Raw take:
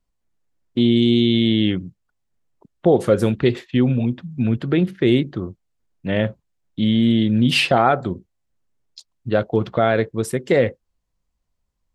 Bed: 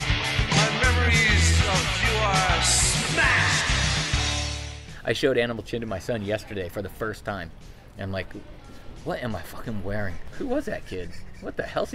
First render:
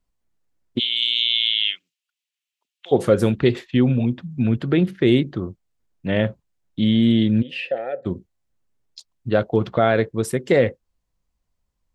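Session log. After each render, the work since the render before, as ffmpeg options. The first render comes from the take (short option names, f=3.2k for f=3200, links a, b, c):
-filter_complex "[0:a]asplit=3[a][b][c];[a]afade=t=out:st=0.78:d=0.02[d];[b]highpass=f=2.8k:t=q:w=2.8,afade=t=in:st=0.78:d=0.02,afade=t=out:st=2.91:d=0.02[e];[c]afade=t=in:st=2.91:d=0.02[f];[d][e][f]amix=inputs=3:normalize=0,asplit=3[g][h][i];[g]afade=t=out:st=7.41:d=0.02[j];[h]asplit=3[k][l][m];[k]bandpass=f=530:t=q:w=8,volume=0dB[n];[l]bandpass=f=1.84k:t=q:w=8,volume=-6dB[o];[m]bandpass=f=2.48k:t=q:w=8,volume=-9dB[p];[n][o][p]amix=inputs=3:normalize=0,afade=t=in:st=7.41:d=0.02,afade=t=out:st=8.05:d=0.02[q];[i]afade=t=in:st=8.05:d=0.02[r];[j][q][r]amix=inputs=3:normalize=0"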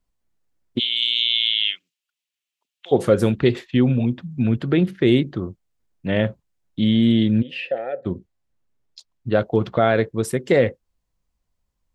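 -filter_complex "[0:a]asettb=1/sr,asplit=3[a][b][c];[a]atrim=end=7.374[d];[b]atrim=start=7.37:end=9.38,asetpts=PTS-STARTPTS,afade=t=in:d=0.004:c=qsin,afade=t=out:st=2.006:d=0.004:c=qsin,highshelf=f=7.3k:g=-8.5[e];[c]atrim=start=9.376[f];[d][e]acrossfade=d=0.004:c1=hsin:c2=qsin[g];[g][f]acrossfade=d=0.004:c1=qsin:c2=hsin"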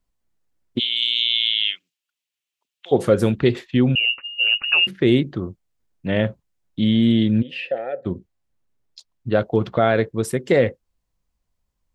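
-filter_complex "[0:a]asettb=1/sr,asplit=3[a][b][c];[a]atrim=end=3.954[d];[b]atrim=start=3.95:end=4.87,asetpts=PTS-STARTPTS,afade=t=in:d=0.004:c=qsin,afade=t=out:st=0.916:d=0.004:c=qsin,lowpass=f=2.6k:t=q:w=0.5098,lowpass=f=2.6k:t=q:w=0.6013,lowpass=f=2.6k:t=q:w=0.9,lowpass=f=2.6k:t=q:w=2.563,afreqshift=-3000[e];[c]atrim=start=4.866[f];[d][e]acrossfade=d=0.004:c1=hsin:c2=qsin[g];[g][f]acrossfade=d=0.004:c1=qsin:c2=hsin"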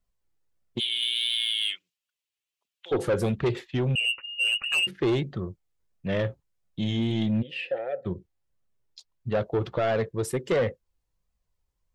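-af "flanger=delay=1.5:depth=1:regen=-44:speed=1.5:shape=triangular,asoftclip=type=tanh:threshold=-19dB"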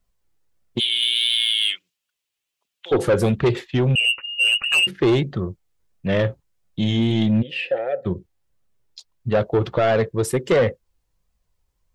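-af "volume=7dB"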